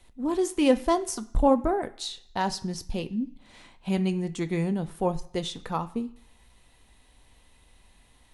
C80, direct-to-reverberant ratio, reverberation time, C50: 20.0 dB, 9.0 dB, 0.70 s, 17.0 dB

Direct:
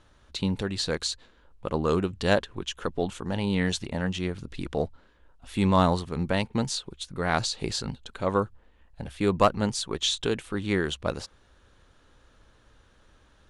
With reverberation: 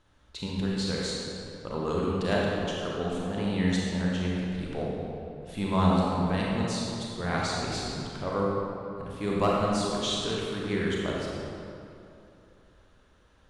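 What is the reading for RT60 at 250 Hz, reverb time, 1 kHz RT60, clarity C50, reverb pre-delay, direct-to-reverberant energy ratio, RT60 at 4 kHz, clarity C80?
2.9 s, 2.8 s, 2.7 s, -3.0 dB, 29 ms, -4.5 dB, 1.7 s, -1.0 dB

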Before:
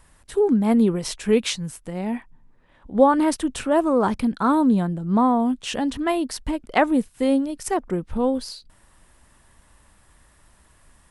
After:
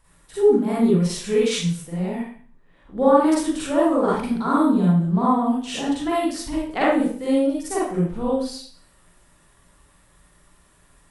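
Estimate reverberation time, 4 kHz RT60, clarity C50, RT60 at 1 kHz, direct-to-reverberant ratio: 0.50 s, 0.45 s, -3.0 dB, 0.50 s, -8.0 dB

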